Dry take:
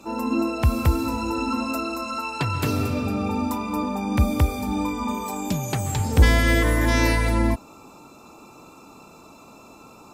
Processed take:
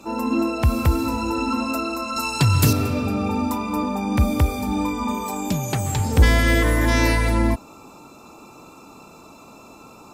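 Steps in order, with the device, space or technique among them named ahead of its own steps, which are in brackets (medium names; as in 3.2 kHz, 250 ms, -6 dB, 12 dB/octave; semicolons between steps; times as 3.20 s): 2.16–2.73 s: tone controls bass +9 dB, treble +13 dB; parallel distortion (in parallel at -11 dB: hard clipper -19.5 dBFS, distortion -8 dB)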